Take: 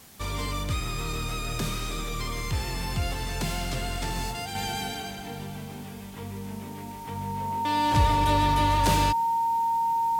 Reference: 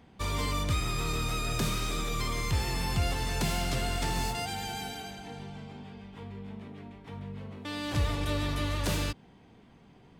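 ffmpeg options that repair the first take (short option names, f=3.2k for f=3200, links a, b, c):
-af "bandreject=f=920:w=30,afwtdn=0.0028,asetnsamples=n=441:p=0,asendcmd='4.55 volume volume -5.5dB',volume=0dB"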